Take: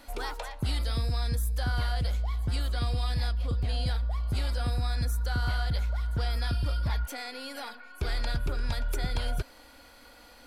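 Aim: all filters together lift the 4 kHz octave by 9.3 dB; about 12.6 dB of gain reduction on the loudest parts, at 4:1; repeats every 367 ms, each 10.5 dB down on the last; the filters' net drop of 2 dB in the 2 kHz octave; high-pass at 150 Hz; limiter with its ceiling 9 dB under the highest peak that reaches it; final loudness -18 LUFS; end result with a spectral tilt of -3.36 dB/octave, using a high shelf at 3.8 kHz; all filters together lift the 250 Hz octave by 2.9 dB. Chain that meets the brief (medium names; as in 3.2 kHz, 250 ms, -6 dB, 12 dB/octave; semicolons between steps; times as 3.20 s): high-pass 150 Hz; peaking EQ 250 Hz +5 dB; peaking EQ 2 kHz -6.5 dB; treble shelf 3.8 kHz +7 dB; peaking EQ 4 kHz +8 dB; compression 4:1, threshold -43 dBFS; peak limiter -36 dBFS; feedback delay 367 ms, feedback 30%, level -10.5 dB; trim +27 dB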